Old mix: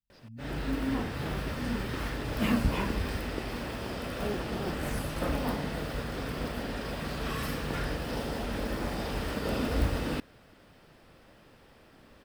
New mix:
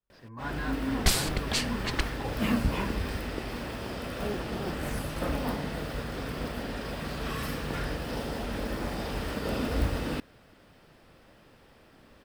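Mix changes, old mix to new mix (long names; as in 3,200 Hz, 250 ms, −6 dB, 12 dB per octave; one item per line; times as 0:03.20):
speech: remove linear-phase brick-wall band-stop 270–2,500 Hz
second sound: unmuted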